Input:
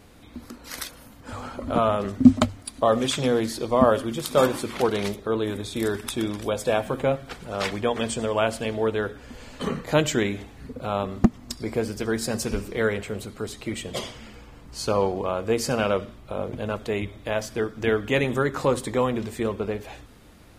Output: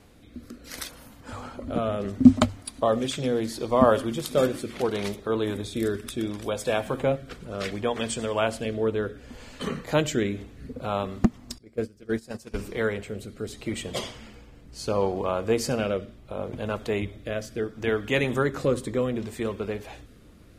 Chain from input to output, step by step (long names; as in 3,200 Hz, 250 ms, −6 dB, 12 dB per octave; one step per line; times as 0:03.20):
0:11.58–0:12.59: noise gate −24 dBFS, range −20 dB
rotating-speaker cabinet horn 0.7 Hz